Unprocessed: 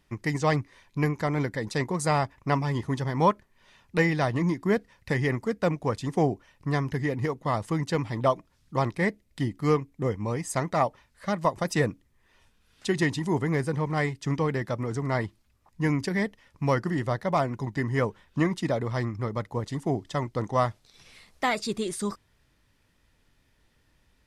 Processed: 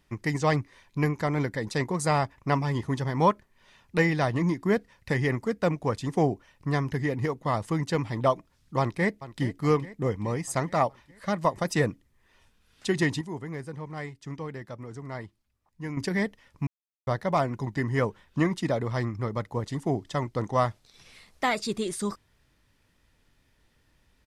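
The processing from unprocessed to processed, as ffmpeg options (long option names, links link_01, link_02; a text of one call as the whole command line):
ffmpeg -i in.wav -filter_complex "[0:a]asplit=2[link_01][link_02];[link_02]afade=type=in:start_time=8.79:duration=0.01,afade=type=out:start_time=9.43:duration=0.01,aecho=0:1:420|840|1260|1680|2100|2520:0.177828|0.106697|0.0640181|0.0384108|0.0230465|0.0138279[link_03];[link_01][link_03]amix=inputs=2:normalize=0,asplit=5[link_04][link_05][link_06][link_07][link_08];[link_04]atrim=end=13.212[link_09];[link_05]atrim=start=13.208:end=15.972,asetpts=PTS-STARTPTS,volume=-10dB[link_10];[link_06]atrim=start=15.968:end=16.67,asetpts=PTS-STARTPTS,afade=type=out:start_time=0.698:duration=0.004:curve=hsin[link_11];[link_07]atrim=start=16.67:end=17.07,asetpts=PTS-STARTPTS,volume=0[link_12];[link_08]atrim=start=17.07,asetpts=PTS-STARTPTS,afade=type=in:duration=0.004:curve=hsin[link_13];[link_09][link_10]acrossfade=duration=0.004:curve1=hsin:curve2=hsin[link_14];[link_11][link_12][link_13]concat=n=3:v=0:a=1[link_15];[link_14][link_15]acrossfade=duration=0.004:curve1=hsin:curve2=hsin" out.wav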